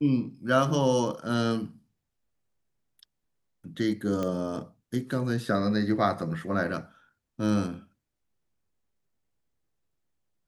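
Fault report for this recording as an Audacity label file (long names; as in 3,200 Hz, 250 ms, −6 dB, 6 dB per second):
4.230000	4.230000	click −18 dBFS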